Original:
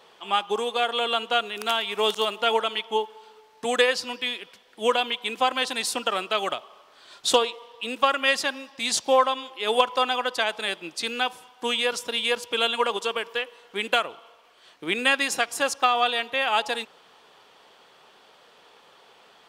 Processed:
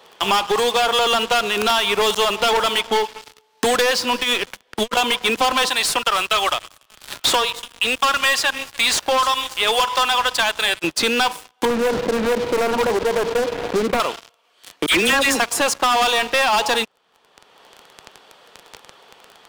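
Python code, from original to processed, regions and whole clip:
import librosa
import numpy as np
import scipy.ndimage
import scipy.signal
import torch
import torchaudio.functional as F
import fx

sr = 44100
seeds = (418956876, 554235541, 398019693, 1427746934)

y = fx.chain(x, sr, fx.over_compress(threshold_db=-30.0, ratio=-0.5),
    fx.tube_stage(drive_db=25.0, bias=0.6), at=(4.11, 4.97))
y = fx.chain(y, sr, fx.highpass(hz=1300.0, slope=6),
    fx.echo_wet_highpass(ms=290, feedback_pct=61, hz=1700.0, wet_db=-22.0), at=(5.69, 10.84))
y = fx.chain(y, sr, fx.median_filter(points=41),
    fx.lowpass(hz=1600.0, slope=24),
    fx.env_flatten(amount_pct=50), at=(11.65, 14.0))
y = fx.chain(y, sr, fx.dispersion(late='lows', ms=81.0, hz=1700.0),
    fx.band_squash(depth_pct=70), at=(14.86, 15.4))
y = fx.dynamic_eq(y, sr, hz=1000.0, q=4.9, threshold_db=-42.0, ratio=4.0, max_db=5)
y = fx.leveller(y, sr, passes=5)
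y = fx.band_squash(y, sr, depth_pct=70)
y = F.gain(torch.from_numpy(y), -6.0).numpy()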